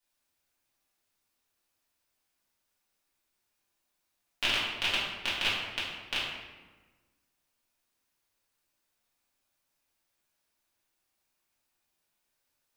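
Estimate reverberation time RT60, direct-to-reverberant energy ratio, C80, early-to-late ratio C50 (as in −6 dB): 1.3 s, −9.0 dB, 3.5 dB, 1.0 dB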